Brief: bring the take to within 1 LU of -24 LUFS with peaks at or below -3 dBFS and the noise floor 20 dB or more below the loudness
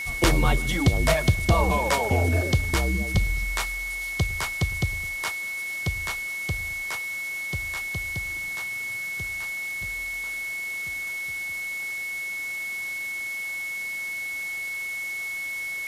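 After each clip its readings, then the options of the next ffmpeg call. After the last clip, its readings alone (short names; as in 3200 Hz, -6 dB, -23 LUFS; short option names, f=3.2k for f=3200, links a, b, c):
steady tone 2200 Hz; tone level -29 dBFS; noise floor -32 dBFS; noise floor target -47 dBFS; loudness -26.5 LUFS; peak -8.0 dBFS; loudness target -24.0 LUFS
-> -af "bandreject=f=2.2k:w=30"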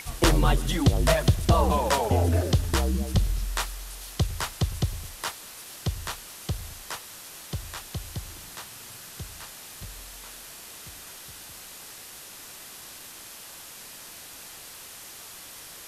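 steady tone none; noise floor -44 dBFS; noise floor target -48 dBFS
-> -af "afftdn=nr=6:nf=-44"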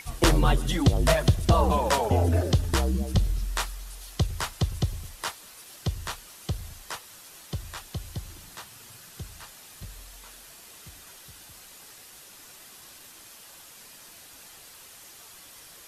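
noise floor -49 dBFS; loudness -27.0 LUFS; peak -8.0 dBFS; loudness target -24.0 LUFS
-> -af "volume=3dB"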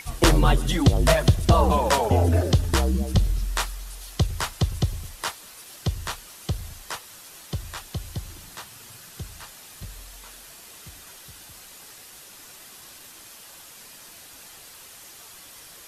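loudness -24.0 LUFS; peak -5.0 dBFS; noise floor -46 dBFS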